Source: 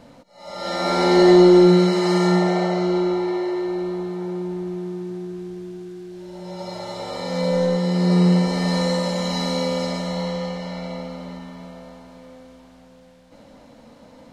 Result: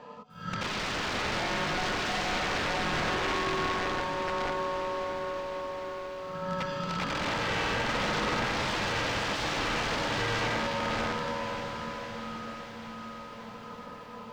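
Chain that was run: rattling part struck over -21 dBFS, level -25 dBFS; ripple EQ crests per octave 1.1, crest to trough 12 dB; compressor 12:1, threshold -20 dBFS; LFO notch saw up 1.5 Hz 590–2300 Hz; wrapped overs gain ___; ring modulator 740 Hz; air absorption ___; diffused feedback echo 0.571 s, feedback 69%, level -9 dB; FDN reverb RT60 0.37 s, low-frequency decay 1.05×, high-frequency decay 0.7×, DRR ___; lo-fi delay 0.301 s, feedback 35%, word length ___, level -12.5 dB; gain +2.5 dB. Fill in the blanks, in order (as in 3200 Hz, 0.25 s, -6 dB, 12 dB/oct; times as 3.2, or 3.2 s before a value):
23.5 dB, 160 m, 18 dB, 10-bit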